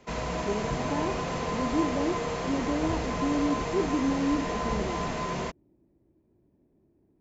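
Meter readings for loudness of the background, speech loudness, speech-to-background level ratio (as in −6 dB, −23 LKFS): −31.5 LKFS, −31.5 LKFS, 0.0 dB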